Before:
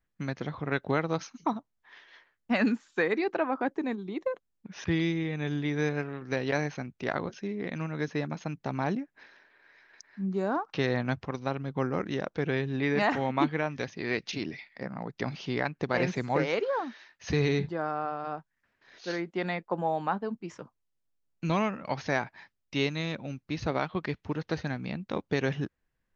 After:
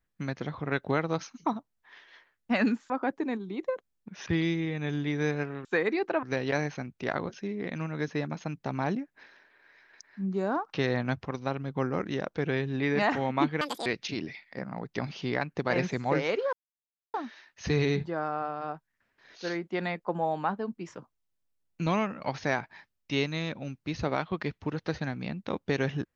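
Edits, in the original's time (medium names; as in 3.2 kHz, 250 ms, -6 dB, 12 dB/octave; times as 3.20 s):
2.90–3.48 s: move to 6.23 s
13.61–14.10 s: speed 197%
16.77 s: insert silence 0.61 s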